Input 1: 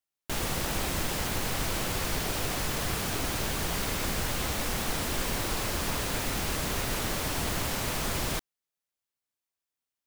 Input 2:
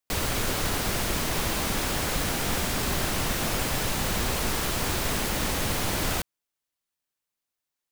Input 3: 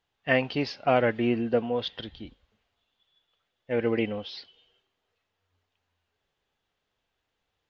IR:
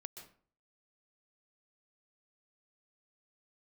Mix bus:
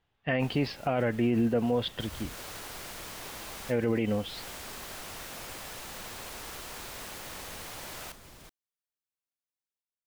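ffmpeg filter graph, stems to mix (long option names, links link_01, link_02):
-filter_complex "[0:a]alimiter=limit=-23.5dB:level=0:latency=1:release=75,adelay=100,volume=-18dB[link_01];[1:a]acrossover=split=410[link_02][link_03];[link_02]acompressor=threshold=-38dB:ratio=6[link_04];[link_04][link_03]amix=inputs=2:normalize=0,adelay=1900,volume=-13dB[link_05];[2:a]bass=frequency=250:gain=6,treble=frequency=4000:gain=-8,volume=2dB,asplit=2[link_06][link_07];[link_07]apad=whole_len=432665[link_08];[link_05][link_08]sidechaincompress=threshold=-33dB:ratio=8:attack=16:release=345[link_09];[link_01][link_09][link_06]amix=inputs=3:normalize=0,alimiter=limit=-18dB:level=0:latency=1:release=38"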